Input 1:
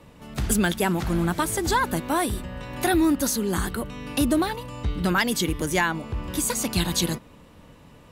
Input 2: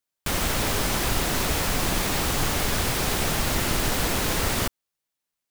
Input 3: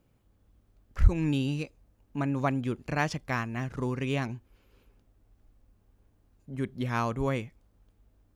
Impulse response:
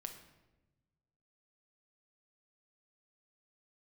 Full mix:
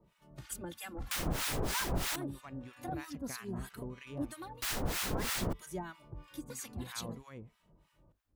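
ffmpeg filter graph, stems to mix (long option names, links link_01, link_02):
-filter_complex "[0:a]asplit=2[link_01][link_02];[link_02]adelay=2.7,afreqshift=-0.52[link_03];[link_01][link_03]amix=inputs=2:normalize=1,volume=-11.5dB[link_04];[1:a]adelay=850,volume=-6dB,asplit=3[link_05][link_06][link_07];[link_05]atrim=end=2.16,asetpts=PTS-STARTPTS,afade=type=out:start_time=2.156:duration=0.004:curve=hsin[link_08];[link_06]atrim=start=2.16:end=4.62,asetpts=PTS-STARTPTS,volume=0[link_09];[link_07]atrim=start=4.62,asetpts=PTS-STARTPTS,afade=type=in:duration=0.004:curve=hsin[link_10];[link_08][link_09][link_10]concat=n=3:v=0:a=1[link_11];[2:a]acompressor=threshold=-33dB:ratio=6,volume=-5dB[link_12];[link_04][link_11][link_12]amix=inputs=3:normalize=0,acrossover=split=1000[link_13][link_14];[link_13]aeval=exprs='val(0)*(1-1/2+1/2*cos(2*PI*3.1*n/s))':channel_layout=same[link_15];[link_14]aeval=exprs='val(0)*(1-1/2-1/2*cos(2*PI*3.1*n/s))':channel_layout=same[link_16];[link_15][link_16]amix=inputs=2:normalize=0"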